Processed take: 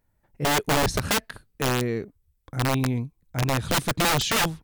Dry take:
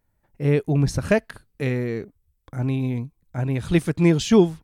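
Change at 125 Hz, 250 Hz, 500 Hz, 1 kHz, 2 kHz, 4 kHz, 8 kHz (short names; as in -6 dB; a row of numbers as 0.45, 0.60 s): -5.0, -7.5, -5.5, +9.5, +5.0, +8.5, +8.5 dB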